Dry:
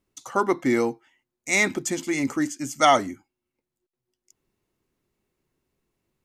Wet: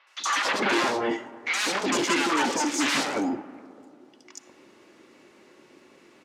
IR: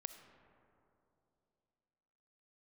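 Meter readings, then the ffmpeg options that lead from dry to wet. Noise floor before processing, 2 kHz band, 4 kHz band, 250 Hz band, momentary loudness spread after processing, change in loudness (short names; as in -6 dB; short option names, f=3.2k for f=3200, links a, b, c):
under -85 dBFS, +1.0 dB, +5.0 dB, -1.5 dB, 7 LU, -1.5 dB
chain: -filter_complex "[0:a]aecho=1:1:3.5:0.31,aeval=exprs='0.562*sin(PI/2*10*val(0)/0.562)':c=same,aeval=exprs='(tanh(17.8*val(0)+0.35)-tanh(0.35))/17.8':c=same,highpass=330,lowpass=4.9k,acrossover=split=860|3800[a][b][c];[c]adelay=70[d];[a]adelay=190[e];[e][b][d]amix=inputs=3:normalize=0,asplit=2[f][g];[1:a]atrim=start_sample=2205[h];[g][h]afir=irnorm=-1:irlink=0,volume=2.5dB[i];[f][i]amix=inputs=2:normalize=0"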